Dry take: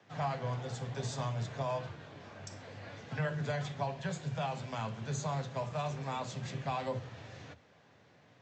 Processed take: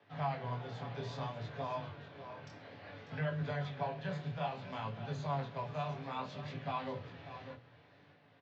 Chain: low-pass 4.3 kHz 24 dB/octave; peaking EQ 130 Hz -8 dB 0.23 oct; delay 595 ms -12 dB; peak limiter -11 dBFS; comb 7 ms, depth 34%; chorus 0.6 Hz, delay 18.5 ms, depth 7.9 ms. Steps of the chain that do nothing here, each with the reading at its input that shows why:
peak limiter -11 dBFS: peak at its input -22.5 dBFS

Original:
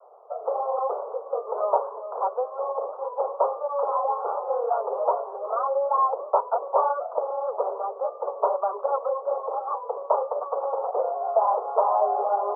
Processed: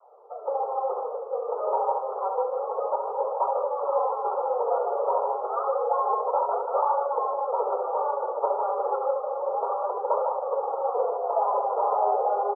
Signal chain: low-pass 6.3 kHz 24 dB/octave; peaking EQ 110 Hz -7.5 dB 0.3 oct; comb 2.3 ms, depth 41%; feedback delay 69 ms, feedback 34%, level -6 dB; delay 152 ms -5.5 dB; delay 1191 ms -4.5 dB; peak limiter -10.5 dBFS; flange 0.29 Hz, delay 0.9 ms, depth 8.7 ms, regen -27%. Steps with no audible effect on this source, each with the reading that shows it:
low-pass 6.3 kHz: input has nothing above 1.4 kHz; peaking EQ 110 Hz: input has nothing below 360 Hz

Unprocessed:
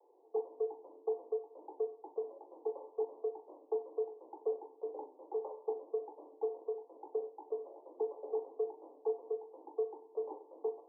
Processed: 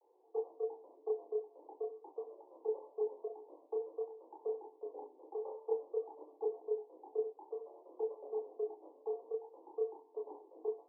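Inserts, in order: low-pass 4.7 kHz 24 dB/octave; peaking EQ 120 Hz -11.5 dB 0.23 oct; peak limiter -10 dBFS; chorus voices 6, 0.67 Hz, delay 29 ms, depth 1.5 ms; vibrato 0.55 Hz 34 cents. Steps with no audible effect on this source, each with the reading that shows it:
low-pass 4.7 kHz: input has nothing above 960 Hz; peaking EQ 120 Hz: input has nothing below 290 Hz; peak limiter -10 dBFS: peak at its input -24.0 dBFS

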